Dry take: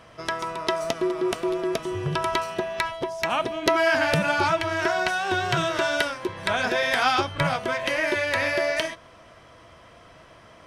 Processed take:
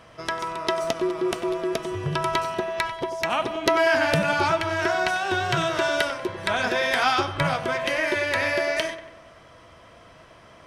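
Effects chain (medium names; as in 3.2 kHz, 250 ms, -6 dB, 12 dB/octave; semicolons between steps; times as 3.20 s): filtered feedback delay 94 ms, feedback 57%, low-pass 3.2 kHz, level -12.5 dB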